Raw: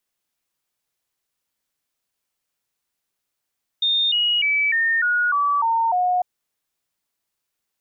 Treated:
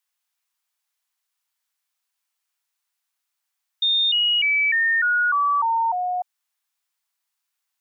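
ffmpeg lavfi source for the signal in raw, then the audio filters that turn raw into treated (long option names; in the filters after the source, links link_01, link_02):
-f lavfi -i "aevalsrc='0.15*clip(min(mod(t,0.3),0.3-mod(t,0.3))/0.005,0,1)*sin(2*PI*3650*pow(2,-floor(t/0.3)/3)*mod(t,0.3))':duration=2.4:sample_rate=44100"
-af "highpass=frequency=790:width=0.5412,highpass=frequency=790:width=1.3066"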